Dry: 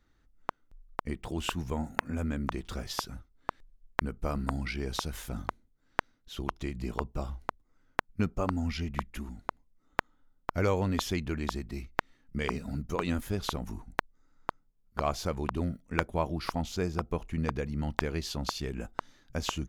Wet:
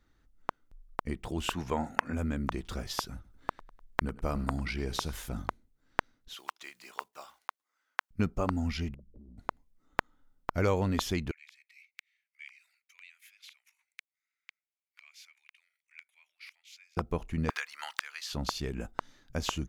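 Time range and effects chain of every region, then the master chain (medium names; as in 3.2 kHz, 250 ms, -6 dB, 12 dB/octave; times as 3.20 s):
1.53–2.13 s: treble shelf 10 kHz -3.5 dB + overdrive pedal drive 13 dB, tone 3.3 kHz, clips at -4.5 dBFS
3.14–5.15 s: feedback delay 100 ms, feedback 38%, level -19 dB + upward compressor, threshold -48 dBFS
6.34–8.11 s: block-companded coder 7-bit + high-pass 1.1 kHz
8.94–9.38 s: Chebyshev low-pass 600 Hz, order 6 + compression 16:1, threshold -47 dBFS
11.31–16.97 s: compression 4:1, threshold -37 dBFS + ladder high-pass 2.1 kHz, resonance 75%
17.50–18.33 s: high-pass 1.2 kHz 24 dB/octave + three bands compressed up and down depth 100%
whole clip: none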